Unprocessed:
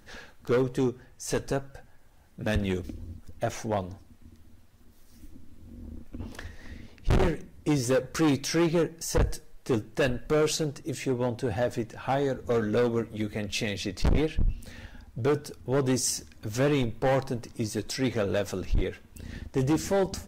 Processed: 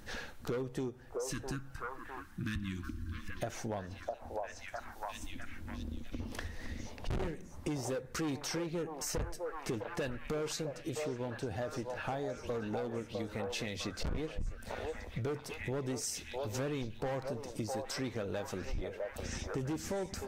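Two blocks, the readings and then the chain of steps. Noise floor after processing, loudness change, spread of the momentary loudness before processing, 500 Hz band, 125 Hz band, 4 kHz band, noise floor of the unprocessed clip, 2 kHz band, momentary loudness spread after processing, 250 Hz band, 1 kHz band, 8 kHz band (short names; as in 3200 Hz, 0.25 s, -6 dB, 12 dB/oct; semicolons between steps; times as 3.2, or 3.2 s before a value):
-50 dBFS, -11.0 dB, 17 LU, -10.0 dB, -10.0 dB, -8.0 dB, -54 dBFS, -7.5 dB, 7 LU, -10.5 dB, -7.5 dB, -8.0 dB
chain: spectral delete 1.16–3.29, 360–1000 Hz; delay with a stepping band-pass 0.655 s, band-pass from 710 Hz, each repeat 0.7 oct, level -2.5 dB; compressor 6:1, threshold -39 dBFS, peak gain reduction 18 dB; gain +3 dB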